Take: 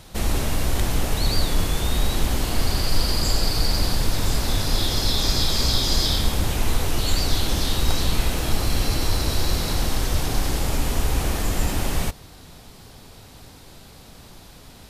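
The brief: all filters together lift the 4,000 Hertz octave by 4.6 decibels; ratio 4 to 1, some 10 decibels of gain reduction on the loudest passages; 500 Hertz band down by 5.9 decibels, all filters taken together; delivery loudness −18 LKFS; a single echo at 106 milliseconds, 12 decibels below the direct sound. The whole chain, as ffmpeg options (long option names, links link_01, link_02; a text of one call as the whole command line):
ffmpeg -i in.wav -af "equalizer=frequency=500:width_type=o:gain=-8,equalizer=frequency=4000:width_type=o:gain=5.5,acompressor=threshold=-25dB:ratio=4,aecho=1:1:106:0.251,volume=11dB" out.wav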